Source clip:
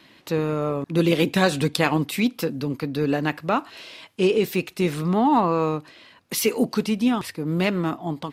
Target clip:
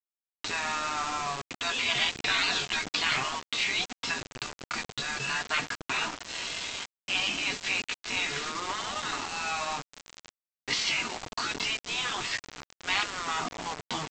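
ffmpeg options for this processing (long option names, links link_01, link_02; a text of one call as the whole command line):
ffmpeg -i in.wav -filter_complex "[0:a]aecho=1:1:4.2:0.47,atempo=0.59,afftfilt=real='re*lt(hypot(re,im),0.158)':imag='im*lt(hypot(re,im),0.158)':win_size=1024:overlap=0.75,acontrast=37,tiltshelf=frequency=930:gain=-3,asplit=2[link_01][link_02];[link_02]adelay=202,lowpass=frequency=3700:poles=1,volume=-24dB,asplit=2[link_03][link_04];[link_04]adelay=202,lowpass=frequency=3700:poles=1,volume=0.51,asplit=2[link_05][link_06];[link_06]adelay=202,lowpass=frequency=3700:poles=1,volume=0.51[link_07];[link_03][link_05][link_07]amix=inputs=3:normalize=0[link_08];[link_01][link_08]amix=inputs=2:normalize=0,acrossover=split=4500[link_09][link_10];[link_10]acompressor=threshold=-42dB:ratio=4:attack=1:release=60[link_11];[link_09][link_11]amix=inputs=2:normalize=0,equalizer=frequency=530:width=5.2:gain=-14,flanger=delay=7.1:depth=2.8:regen=-40:speed=1.2:shape=sinusoidal,aresample=16000,acrusher=bits=5:mix=0:aa=0.000001,aresample=44100,volume=1.5dB" out.wav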